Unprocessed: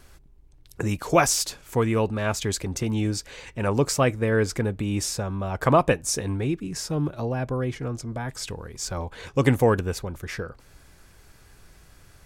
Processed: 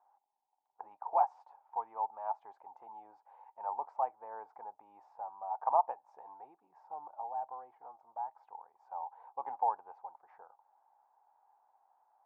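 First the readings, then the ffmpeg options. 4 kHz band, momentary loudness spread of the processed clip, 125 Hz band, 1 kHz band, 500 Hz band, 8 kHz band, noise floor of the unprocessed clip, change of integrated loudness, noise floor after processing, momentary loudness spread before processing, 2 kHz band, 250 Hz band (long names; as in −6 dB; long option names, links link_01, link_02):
below −40 dB, 22 LU, below −40 dB, −4.0 dB, −19.0 dB, below −40 dB, −53 dBFS, −12.5 dB, −81 dBFS, 12 LU, below −30 dB, below −40 dB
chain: -af "asuperpass=centerf=840:order=4:qfactor=4.8,volume=2dB"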